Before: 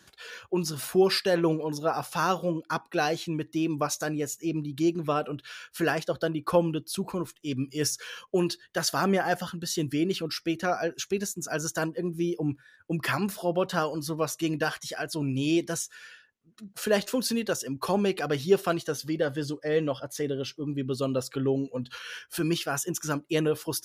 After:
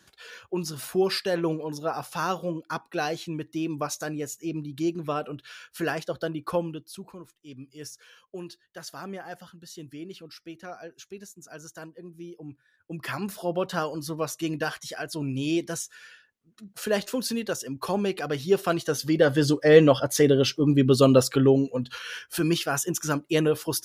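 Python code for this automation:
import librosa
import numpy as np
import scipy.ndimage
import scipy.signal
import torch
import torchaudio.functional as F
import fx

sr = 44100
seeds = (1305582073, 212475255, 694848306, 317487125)

y = fx.gain(x, sr, db=fx.line((6.43, -2.0), (7.22, -13.0), (12.45, -13.0), (13.41, -1.0), (18.44, -1.0), (19.56, 11.0), (21.16, 11.0), (21.9, 3.0)))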